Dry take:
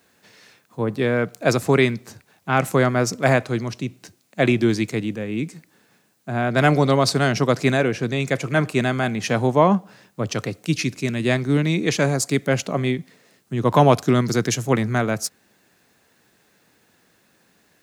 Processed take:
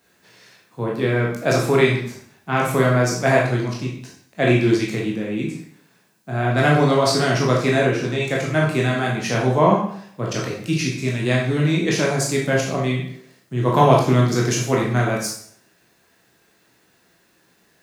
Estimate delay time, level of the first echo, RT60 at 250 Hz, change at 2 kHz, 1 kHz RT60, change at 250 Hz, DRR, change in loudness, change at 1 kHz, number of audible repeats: no echo audible, no echo audible, 0.60 s, +1.5 dB, 0.60 s, 0.0 dB, −3.0 dB, +1.0 dB, +1.5 dB, no echo audible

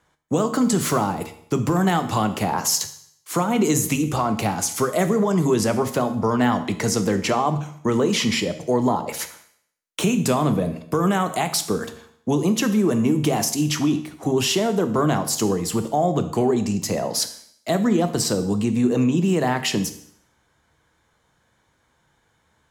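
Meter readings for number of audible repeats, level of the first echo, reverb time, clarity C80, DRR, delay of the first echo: no echo audible, no echo audible, 0.65 s, 15.0 dB, 9.0 dB, no echo audible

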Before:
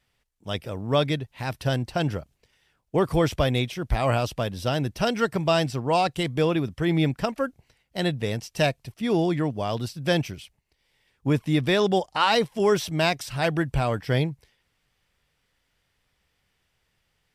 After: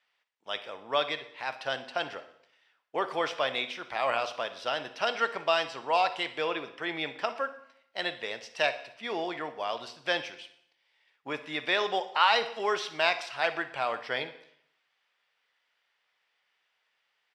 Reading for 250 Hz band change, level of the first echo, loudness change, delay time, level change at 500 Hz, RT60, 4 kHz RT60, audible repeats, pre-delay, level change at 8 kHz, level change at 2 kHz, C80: −17.0 dB, −16.5 dB, −5.5 dB, 60 ms, −7.0 dB, 0.70 s, 0.65 s, 3, 6 ms, −10.0 dB, 0.0 dB, 15.5 dB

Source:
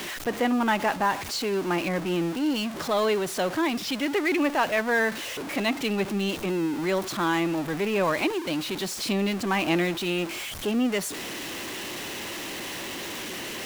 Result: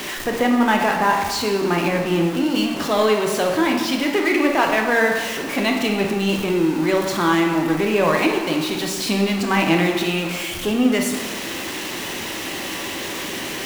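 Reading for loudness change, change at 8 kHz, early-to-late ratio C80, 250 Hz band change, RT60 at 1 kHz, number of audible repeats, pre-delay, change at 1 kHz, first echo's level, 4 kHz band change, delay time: +7.0 dB, +6.0 dB, 6.0 dB, +7.0 dB, 1.4 s, no echo audible, 11 ms, +7.0 dB, no echo audible, +6.0 dB, no echo audible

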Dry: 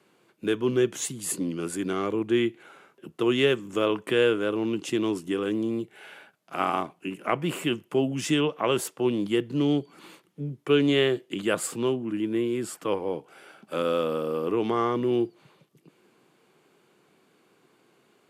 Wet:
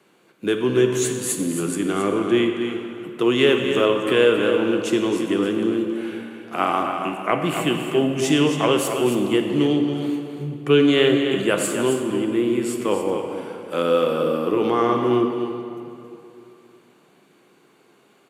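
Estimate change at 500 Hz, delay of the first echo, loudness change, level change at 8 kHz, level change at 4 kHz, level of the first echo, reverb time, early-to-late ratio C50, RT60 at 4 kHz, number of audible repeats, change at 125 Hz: +6.5 dB, 271 ms, +6.0 dB, +6.0 dB, +6.0 dB, −8.0 dB, 2.8 s, 3.5 dB, 1.9 s, 1, +5.0 dB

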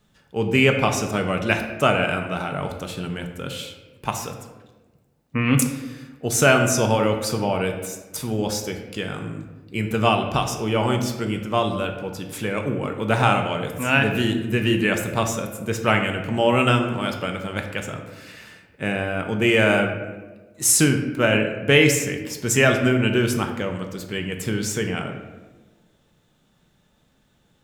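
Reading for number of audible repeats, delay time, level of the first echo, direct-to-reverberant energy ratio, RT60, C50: no echo audible, no echo audible, no echo audible, 4.0 dB, 1.3 s, 7.0 dB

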